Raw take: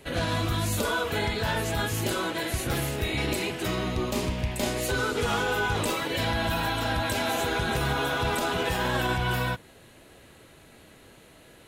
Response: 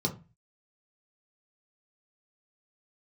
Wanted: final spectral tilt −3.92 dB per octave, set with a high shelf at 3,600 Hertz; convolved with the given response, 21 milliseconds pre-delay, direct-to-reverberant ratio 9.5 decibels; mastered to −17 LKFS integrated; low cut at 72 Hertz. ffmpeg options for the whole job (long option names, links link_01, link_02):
-filter_complex "[0:a]highpass=72,highshelf=frequency=3600:gain=8.5,asplit=2[link_01][link_02];[1:a]atrim=start_sample=2205,adelay=21[link_03];[link_02][link_03]afir=irnorm=-1:irlink=0,volume=-15.5dB[link_04];[link_01][link_04]amix=inputs=2:normalize=0,volume=7.5dB"